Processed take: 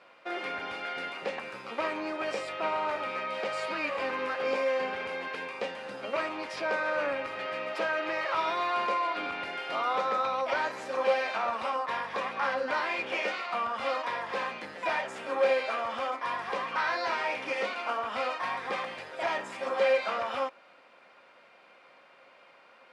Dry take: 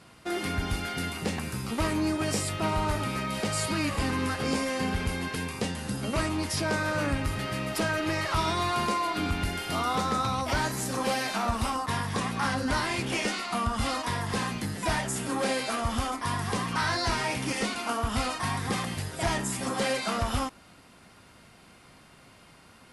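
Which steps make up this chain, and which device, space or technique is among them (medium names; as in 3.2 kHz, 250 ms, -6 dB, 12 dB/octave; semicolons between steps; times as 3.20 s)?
tin-can telephone (band-pass 560–2700 Hz; small resonant body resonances 540/2400 Hz, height 11 dB, ringing for 55 ms)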